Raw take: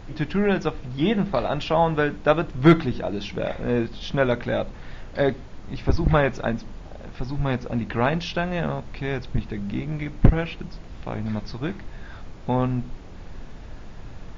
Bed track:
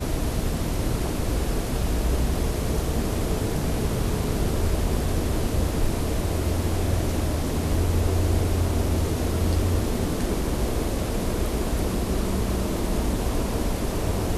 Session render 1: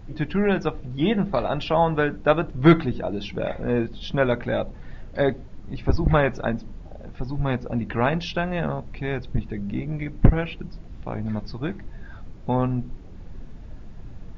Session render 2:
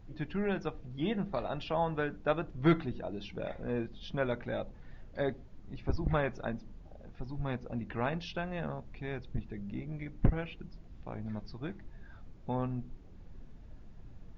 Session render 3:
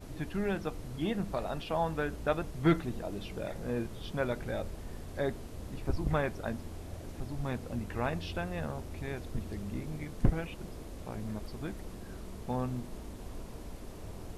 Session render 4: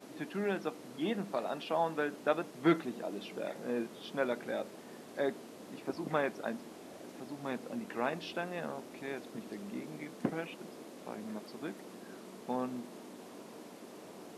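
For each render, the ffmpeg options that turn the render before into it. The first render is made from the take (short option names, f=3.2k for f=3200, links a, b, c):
-af "afftdn=nr=9:nf=-40"
-af "volume=-11.5dB"
-filter_complex "[1:a]volume=-20.5dB[a];[0:a][a]amix=inputs=2:normalize=0"
-af "highpass=f=210:w=0.5412,highpass=f=210:w=1.3066,highshelf=f=9.5k:g=-4.5"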